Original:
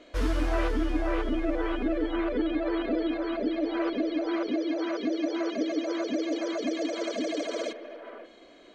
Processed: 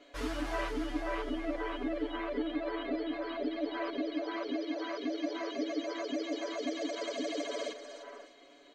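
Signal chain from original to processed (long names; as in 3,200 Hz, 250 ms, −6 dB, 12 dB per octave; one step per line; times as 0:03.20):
low-shelf EQ 240 Hz −9 dB
comb filter 7.1 ms, depth 94%
delay with a high-pass on its return 303 ms, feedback 36%, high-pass 3,600 Hz, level −7.5 dB
level −6 dB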